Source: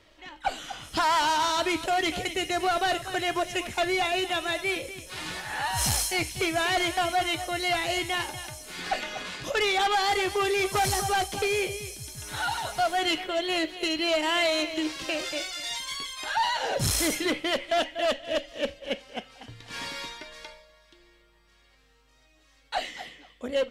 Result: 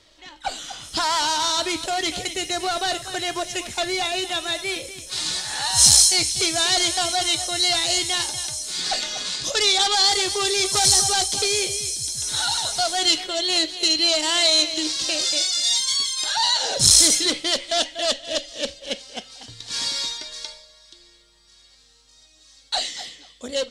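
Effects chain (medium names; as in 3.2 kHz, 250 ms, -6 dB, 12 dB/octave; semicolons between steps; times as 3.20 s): high-order bell 5.8 kHz +9.5 dB, from 5.11 s +16 dB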